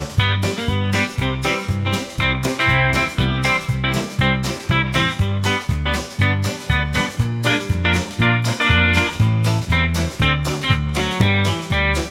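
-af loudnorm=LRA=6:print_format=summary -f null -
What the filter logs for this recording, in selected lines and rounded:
Input Integrated:    -18.5 LUFS
Input True Peak:      -1.1 dBTP
Input LRA:             1.9 LU
Input Threshold:     -28.5 LUFS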